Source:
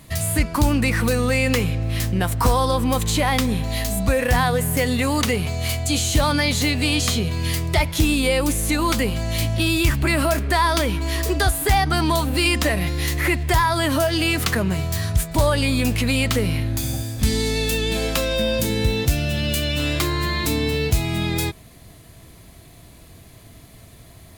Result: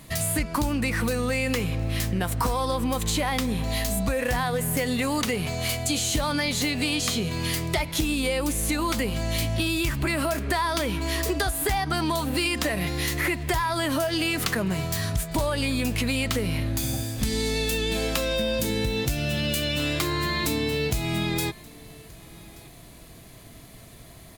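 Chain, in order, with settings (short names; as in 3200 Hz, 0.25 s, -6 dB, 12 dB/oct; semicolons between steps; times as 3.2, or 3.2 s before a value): bell 83 Hz -9.5 dB 0.57 oct; compressor, threshold -22 dBFS, peak gain reduction 8 dB; on a send: echo 1.178 s -24 dB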